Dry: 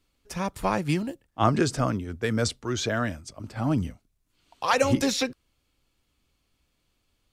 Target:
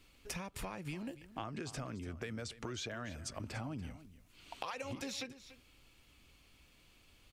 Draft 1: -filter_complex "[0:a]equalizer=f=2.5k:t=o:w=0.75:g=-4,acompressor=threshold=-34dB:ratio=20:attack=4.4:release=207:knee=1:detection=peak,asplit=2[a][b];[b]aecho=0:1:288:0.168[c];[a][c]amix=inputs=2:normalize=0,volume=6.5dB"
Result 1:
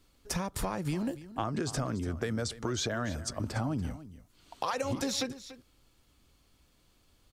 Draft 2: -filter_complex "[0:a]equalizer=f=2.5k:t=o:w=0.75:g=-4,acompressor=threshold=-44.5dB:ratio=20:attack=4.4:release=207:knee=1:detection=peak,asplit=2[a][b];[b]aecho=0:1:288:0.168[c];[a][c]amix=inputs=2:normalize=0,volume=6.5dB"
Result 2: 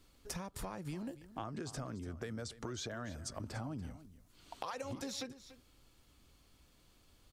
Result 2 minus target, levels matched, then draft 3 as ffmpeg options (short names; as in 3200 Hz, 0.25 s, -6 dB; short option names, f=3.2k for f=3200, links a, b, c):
2000 Hz band -3.5 dB
-filter_complex "[0:a]equalizer=f=2.5k:t=o:w=0.75:g=6,acompressor=threshold=-44.5dB:ratio=20:attack=4.4:release=207:knee=1:detection=peak,asplit=2[a][b];[b]aecho=0:1:288:0.168[c];[a][c]amix=inputs=2:normalize=0,volume=6.5dB"